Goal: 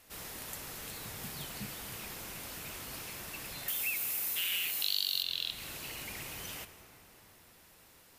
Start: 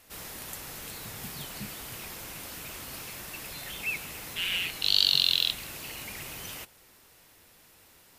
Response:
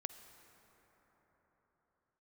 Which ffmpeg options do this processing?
-filter_complex "[0:a]asettb=1/sr,asplit=3[link_01][link_02][link_03];[link_01]atrim=end=3.684[link_04];[link_02]atrim=start=3.68:end=5.23,asetpts=PTS-STARTPTS,afade=type=in:duration=0.004:curve=qsin,afade=type=out:start_time=1.546:duration=0.004:curve=qsin,aemphasis=mode=production:type=bsi[link_05];[link_03]atrim=start=5.226[link_06];[link_04][link_05]acrossfade=duration=0.004:curve1=hsin:curve2=qsin[link_07];[link_07][link_06]acrossfade=duration=0.004:curve1=qsin:curve2=hsin,acompressor=threshold=-29dB:ratio=3[link_08];[1:a]atrim=start_sample=2205[link_09];[link_08][link_09]afir=irnorm=-1:irlink=0"

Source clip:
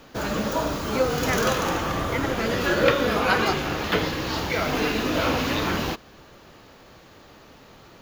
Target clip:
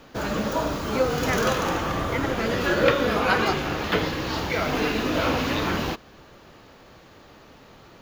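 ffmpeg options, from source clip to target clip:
ffmpeg -i in.wav -af "highshelf=frequency=5100:gain=-4" out.wav

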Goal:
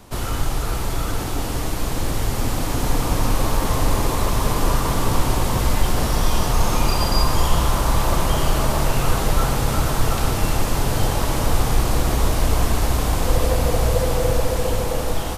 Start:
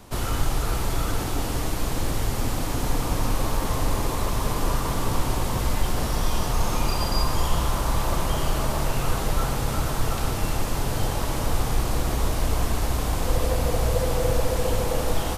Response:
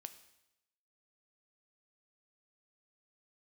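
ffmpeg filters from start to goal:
-af "dynaudnorm=framelen=990:gausssize=5:maxgain=4dB,volume=1.5dB"

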